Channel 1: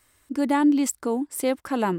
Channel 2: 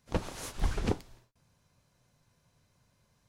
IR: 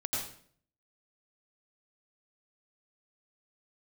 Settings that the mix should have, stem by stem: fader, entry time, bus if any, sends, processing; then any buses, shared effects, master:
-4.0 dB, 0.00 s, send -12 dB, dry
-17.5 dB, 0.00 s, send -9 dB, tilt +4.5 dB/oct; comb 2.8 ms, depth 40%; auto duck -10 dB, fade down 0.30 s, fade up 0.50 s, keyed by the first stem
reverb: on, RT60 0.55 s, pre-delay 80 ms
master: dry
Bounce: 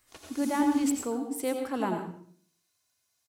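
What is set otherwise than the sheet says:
stem 1 -4.0 dB -> -10.5 dB; reverb return +7.5 dB

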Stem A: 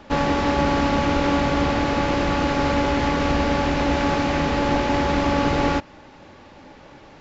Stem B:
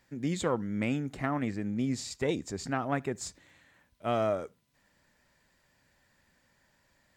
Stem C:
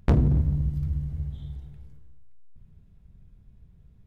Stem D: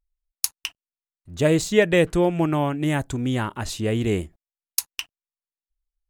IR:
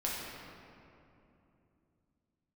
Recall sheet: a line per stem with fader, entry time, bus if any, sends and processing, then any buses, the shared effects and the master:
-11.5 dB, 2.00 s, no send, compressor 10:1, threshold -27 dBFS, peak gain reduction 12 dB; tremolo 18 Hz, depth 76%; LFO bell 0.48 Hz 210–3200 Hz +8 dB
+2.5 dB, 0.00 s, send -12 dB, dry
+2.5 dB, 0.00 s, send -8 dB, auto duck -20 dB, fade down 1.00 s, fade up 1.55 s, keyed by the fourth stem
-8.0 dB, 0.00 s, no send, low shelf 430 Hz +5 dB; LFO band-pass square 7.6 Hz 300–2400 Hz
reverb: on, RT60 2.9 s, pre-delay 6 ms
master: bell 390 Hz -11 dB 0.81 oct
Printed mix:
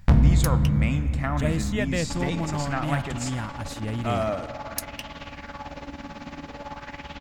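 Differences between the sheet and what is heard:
stem A -11.5 dB -> -4.0 dB; stem D: missing LFO band-pass square 7.6 Hz 300–2400 Hz

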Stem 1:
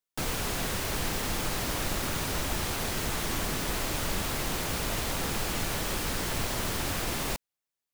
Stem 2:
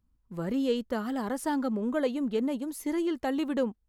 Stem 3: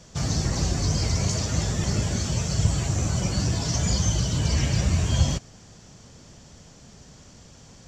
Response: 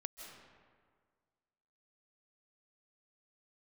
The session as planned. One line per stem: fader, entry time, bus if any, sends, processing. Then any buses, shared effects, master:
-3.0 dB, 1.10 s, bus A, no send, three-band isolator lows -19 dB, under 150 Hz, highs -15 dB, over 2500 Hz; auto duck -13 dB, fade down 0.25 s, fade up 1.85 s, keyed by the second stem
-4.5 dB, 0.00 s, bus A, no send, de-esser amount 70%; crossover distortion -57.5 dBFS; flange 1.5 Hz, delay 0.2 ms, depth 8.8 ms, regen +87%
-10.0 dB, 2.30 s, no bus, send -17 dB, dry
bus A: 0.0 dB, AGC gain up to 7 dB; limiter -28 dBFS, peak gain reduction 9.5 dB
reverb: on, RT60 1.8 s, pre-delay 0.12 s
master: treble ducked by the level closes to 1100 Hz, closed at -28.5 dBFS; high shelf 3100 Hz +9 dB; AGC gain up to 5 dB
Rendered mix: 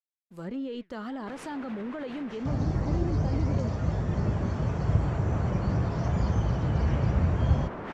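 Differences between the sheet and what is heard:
stem 3 -10.0 dB -> -3.0 dB; master: missing AGC gain up to 5 dB

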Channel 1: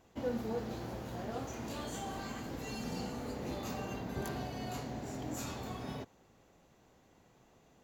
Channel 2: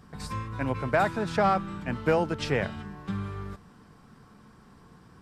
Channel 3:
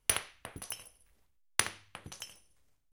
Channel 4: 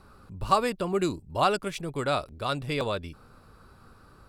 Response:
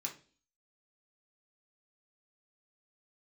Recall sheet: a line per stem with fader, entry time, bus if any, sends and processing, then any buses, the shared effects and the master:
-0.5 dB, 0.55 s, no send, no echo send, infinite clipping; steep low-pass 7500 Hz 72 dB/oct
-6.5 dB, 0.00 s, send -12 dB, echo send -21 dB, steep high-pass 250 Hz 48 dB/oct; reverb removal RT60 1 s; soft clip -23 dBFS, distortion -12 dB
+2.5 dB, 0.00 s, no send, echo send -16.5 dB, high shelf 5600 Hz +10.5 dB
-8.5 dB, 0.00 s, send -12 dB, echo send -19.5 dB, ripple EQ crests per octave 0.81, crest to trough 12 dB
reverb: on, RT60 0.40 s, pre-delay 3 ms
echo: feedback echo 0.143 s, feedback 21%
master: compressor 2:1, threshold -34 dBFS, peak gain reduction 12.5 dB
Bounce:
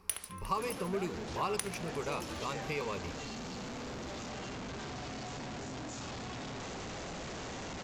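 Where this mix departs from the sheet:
stem 2 -6.5 dB -> -13.5 dB; stem 3 +2.5 dB -> -9.0 dB

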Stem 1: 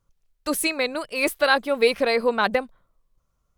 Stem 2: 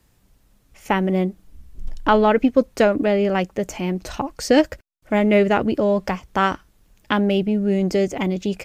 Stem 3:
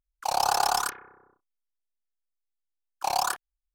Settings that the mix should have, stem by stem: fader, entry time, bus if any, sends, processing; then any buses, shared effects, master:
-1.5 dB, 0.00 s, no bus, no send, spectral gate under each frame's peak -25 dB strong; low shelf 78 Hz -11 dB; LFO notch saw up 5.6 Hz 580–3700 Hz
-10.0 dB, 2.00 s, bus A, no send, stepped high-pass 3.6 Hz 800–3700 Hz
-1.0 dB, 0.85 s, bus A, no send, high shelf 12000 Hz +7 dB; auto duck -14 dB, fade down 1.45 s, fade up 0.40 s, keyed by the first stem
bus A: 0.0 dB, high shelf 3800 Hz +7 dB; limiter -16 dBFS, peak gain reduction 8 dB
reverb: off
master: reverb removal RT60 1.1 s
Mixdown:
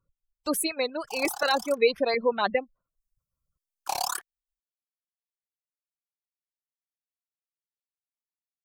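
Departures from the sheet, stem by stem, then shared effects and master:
stem 2: muted; stem 3: missing high shelf 12000 Hz +7 dB

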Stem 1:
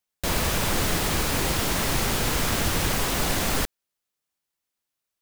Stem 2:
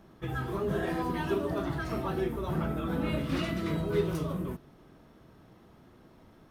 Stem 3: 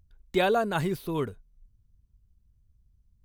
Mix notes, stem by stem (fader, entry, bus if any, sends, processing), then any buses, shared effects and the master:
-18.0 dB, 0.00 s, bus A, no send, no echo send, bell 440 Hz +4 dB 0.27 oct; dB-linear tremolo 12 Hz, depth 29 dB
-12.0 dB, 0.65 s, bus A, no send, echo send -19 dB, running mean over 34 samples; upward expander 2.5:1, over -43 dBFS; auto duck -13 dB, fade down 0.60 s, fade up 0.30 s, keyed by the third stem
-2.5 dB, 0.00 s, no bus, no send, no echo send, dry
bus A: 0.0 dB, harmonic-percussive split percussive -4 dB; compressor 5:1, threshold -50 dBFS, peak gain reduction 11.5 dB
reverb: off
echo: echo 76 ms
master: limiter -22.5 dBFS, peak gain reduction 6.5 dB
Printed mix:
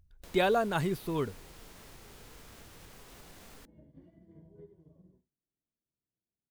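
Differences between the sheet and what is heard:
stem 1: missing dB-linear tremolo 12 Hz, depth 29 dB; master: missing limiter -22.5 dBFS, peak gain reduction 6.5 dB

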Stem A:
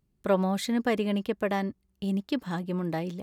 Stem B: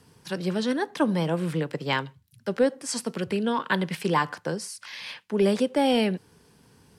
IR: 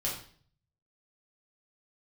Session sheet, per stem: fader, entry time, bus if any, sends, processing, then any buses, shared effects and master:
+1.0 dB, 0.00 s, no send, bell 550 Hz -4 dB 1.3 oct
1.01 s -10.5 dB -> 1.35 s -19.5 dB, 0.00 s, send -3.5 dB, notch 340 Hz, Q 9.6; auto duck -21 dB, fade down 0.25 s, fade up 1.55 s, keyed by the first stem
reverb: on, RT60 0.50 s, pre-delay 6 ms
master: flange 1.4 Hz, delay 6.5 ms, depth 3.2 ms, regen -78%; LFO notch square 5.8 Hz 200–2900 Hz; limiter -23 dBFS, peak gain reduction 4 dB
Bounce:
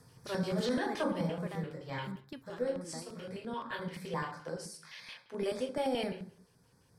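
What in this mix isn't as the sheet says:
stem A +1.0 dB -> -9.0 dB; stem B -10.5 dB -> -1.0 dB

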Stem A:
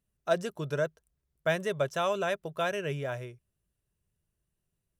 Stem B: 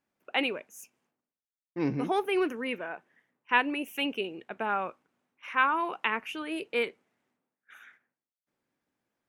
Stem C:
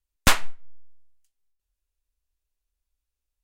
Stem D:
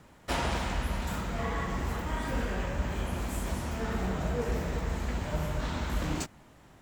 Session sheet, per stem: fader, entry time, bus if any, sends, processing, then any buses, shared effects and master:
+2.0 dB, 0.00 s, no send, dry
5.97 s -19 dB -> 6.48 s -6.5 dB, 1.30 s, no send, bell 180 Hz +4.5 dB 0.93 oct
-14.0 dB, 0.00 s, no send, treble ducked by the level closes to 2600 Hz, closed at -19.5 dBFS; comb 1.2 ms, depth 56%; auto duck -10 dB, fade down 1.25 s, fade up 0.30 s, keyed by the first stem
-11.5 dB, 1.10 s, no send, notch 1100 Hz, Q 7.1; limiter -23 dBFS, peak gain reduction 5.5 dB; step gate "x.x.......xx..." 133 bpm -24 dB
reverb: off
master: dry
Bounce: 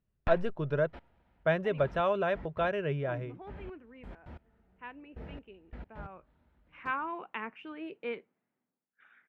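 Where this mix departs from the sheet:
stem D: entry 1.10 s -> 0.65 s; master: extra air absorption 400 m

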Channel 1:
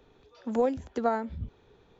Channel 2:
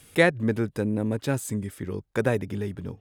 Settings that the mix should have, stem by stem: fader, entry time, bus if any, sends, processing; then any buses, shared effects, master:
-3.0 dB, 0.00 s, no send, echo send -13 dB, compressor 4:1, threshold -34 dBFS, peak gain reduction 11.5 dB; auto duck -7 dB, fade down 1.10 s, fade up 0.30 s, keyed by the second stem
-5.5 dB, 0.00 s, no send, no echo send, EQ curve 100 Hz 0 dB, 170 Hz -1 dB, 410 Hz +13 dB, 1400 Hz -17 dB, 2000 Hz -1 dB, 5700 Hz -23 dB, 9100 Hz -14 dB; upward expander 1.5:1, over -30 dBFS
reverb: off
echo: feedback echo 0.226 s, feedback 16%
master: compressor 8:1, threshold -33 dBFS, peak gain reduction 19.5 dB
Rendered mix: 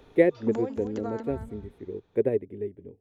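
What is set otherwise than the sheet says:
stem 1 -3.0 dB -> +6.0 dB; master: missing compressor 8:1, threshold -33 dBFS, peak gain reduction 19.5 dB

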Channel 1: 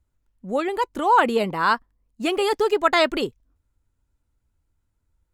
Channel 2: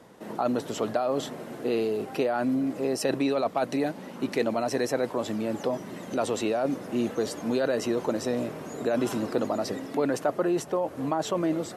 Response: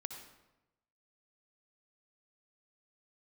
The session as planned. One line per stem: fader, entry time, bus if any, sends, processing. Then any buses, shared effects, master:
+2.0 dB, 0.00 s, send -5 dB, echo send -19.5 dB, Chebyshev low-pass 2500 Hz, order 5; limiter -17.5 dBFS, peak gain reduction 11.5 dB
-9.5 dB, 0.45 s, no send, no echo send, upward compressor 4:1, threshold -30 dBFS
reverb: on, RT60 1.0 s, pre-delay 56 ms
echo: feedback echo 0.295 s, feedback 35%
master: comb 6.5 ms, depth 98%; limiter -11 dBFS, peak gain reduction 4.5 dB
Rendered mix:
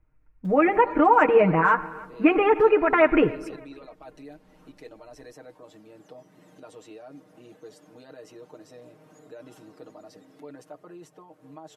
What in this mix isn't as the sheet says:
stem 2 -9.5 dB -> -21.5 dB; master: missing limiter -11 dBFS, peak gain reduction 4.5 dB

